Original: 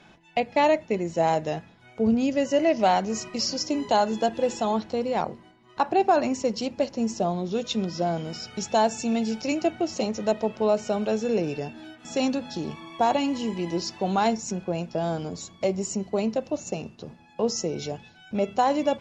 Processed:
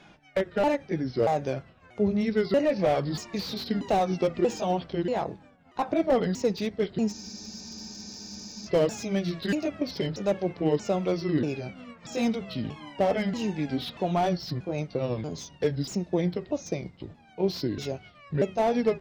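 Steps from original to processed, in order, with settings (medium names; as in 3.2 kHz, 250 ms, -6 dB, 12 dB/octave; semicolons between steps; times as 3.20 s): sawtooth pitch modulation -6.5 st, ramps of 635 ms; spectral freeze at 7.15 s, 1.52 s; slew-rate limiter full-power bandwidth 74 Hz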